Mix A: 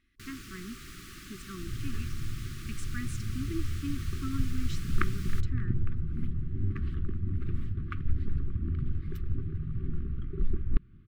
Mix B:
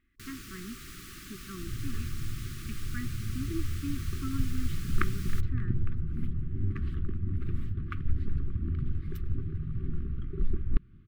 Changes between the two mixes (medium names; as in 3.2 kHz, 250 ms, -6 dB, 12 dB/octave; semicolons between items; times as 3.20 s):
speech: add low-pass 2.3 kHz 12 dB/octave; master: add treble shelf 9.9 kHz +6 dB